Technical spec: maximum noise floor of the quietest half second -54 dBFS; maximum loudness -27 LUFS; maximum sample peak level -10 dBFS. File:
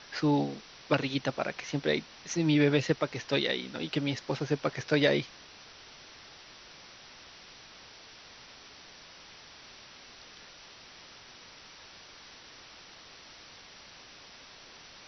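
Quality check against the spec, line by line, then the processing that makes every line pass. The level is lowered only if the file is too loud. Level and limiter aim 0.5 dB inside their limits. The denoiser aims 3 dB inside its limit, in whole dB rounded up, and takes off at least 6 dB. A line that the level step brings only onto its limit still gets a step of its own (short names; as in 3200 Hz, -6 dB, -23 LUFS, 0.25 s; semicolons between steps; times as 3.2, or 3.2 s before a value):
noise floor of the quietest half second -52 dBFS: fail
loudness -30.0 LUFS: OK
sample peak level -11.0 dBFS: OK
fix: denoiser 6 dB, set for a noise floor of -52 dBFS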